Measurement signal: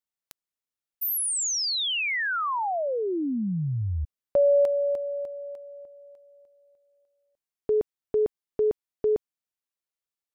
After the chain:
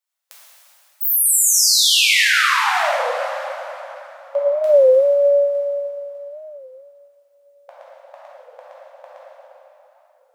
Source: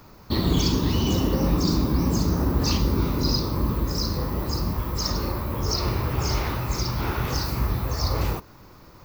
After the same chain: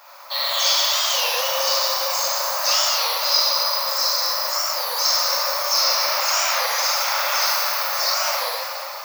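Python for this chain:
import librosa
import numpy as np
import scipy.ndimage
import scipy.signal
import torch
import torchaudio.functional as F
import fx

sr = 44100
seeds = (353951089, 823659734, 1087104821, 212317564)

y = fx.dynamic_eq(x, sr, hz=850.0, q=1.2, threshold_db=-43.0, ratio=4.0, max_db=-6)
y = fx.brickwall_highpass(y, sr, low_hz=520.0)
y = fx.rev_plate(y, sr, seeds[0], rt60_s=3.5, hf_ratio=0.8, predelay_ms=0, drr_db=-9.0)
y = fx.record_warp(y, sr, rpm=33.33, depth_cents=160.0)
y = F.gain(torch.from_numpy(y), 4.0).numpy()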